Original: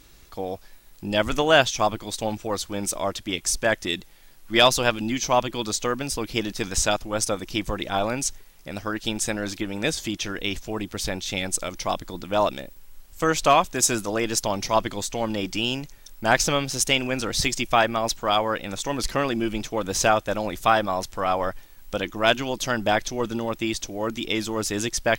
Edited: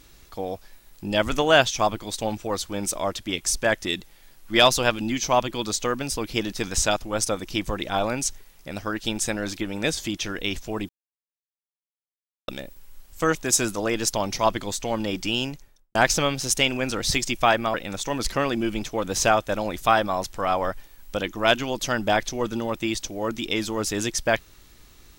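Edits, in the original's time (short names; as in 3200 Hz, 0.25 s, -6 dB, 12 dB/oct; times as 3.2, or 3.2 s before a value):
10.89–12.48 mute
13.35–13.65 cut
15.74–16.25 studio fade out
18.04–18.53 cut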